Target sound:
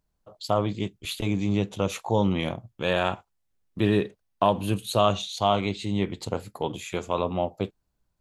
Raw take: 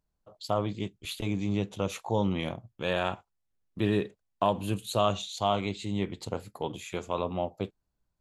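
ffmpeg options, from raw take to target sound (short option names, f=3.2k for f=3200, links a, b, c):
-filter_complex "[0:a]asettb=1/sr,asplit=3[a][b][c];[a]atrim=end=3.874[d];[b]atrim=start=3.87:end=6.1,asetpts=PTS-STARTPTS,afade=t=in:d=0.004:c=qsin,afade=t=out:st=2.226:d=0.004:c=qsin,bandreject=f=7.3k:w=8.5[e];[c]atrim=start=6.096[f];[d][e]acrossfade=d=0.004:c1=hsin:c2=qsin[g];[g][f]acrossfade=d=0.004:c1=qsin:c2=hsin,volume=4.5dB"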